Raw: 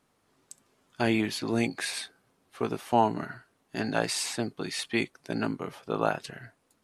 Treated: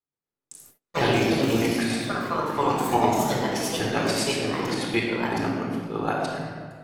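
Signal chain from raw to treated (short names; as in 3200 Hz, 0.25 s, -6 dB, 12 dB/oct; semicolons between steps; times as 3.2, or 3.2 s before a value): chopper 7.9 Hz, depth 65%, duty 45%; shoebox room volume 2900 m³, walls mixed, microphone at 4 m; gate -55 dBFS, range -31 dB; echoes that change speed 0.118 s, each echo +3 st, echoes 3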